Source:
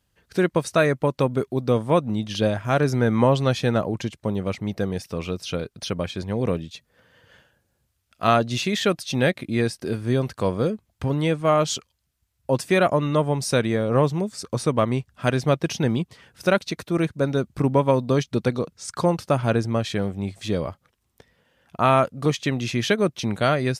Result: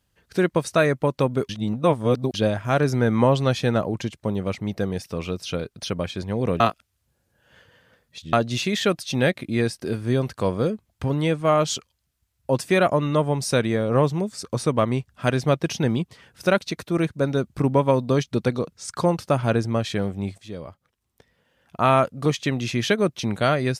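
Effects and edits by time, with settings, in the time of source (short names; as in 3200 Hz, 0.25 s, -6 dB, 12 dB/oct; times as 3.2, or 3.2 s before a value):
1.49–2.34 reverse
6.6–8.33 reverse
20.38–21.9 fade in, from -13.5 dB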